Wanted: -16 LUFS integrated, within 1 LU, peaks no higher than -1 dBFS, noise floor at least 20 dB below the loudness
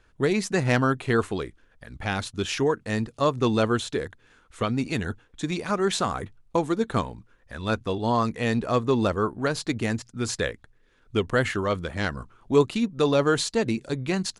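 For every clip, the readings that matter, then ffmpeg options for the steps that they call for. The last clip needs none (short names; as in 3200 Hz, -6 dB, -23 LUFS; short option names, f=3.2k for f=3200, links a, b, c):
loudness -26.0 LUFS; peak -7.5 dBFS; loudness target -16.0 LUFS
-> -af "volume=10dB,alimiter=limit=-1dB:level=0:latency=1"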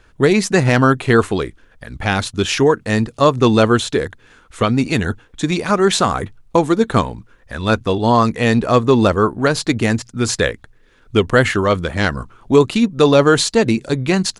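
loudness -16.0 LUFS; peak -1.0 dBFS; noise floor -51 dBFS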